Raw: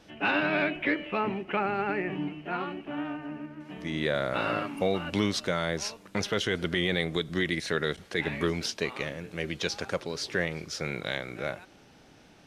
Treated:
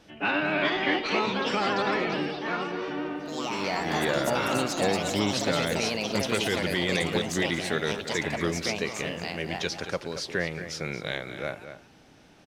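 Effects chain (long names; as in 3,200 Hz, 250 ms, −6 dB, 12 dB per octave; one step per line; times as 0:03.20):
delay with pitch and tempo change per echo 450 ms, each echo +4 semitones, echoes 3
slap from a distant wall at 39 metres, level −10 dB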